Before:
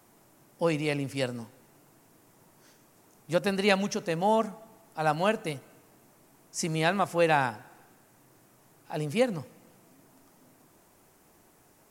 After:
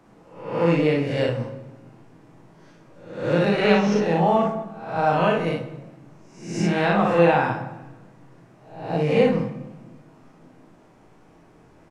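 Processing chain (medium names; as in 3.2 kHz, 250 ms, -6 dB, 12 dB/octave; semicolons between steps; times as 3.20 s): reverse spectral sustain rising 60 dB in 0.67 s; in parallel at -3 dB: peak limiter -18.5 dBFS, peak gain reduction 11 dB; on the sum: tape spacing loss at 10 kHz 23 dB; early reflections 35 ms -4.5 dB, 59 ms -3 dB; simulated room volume 450 m³, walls mixed, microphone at 0.59 m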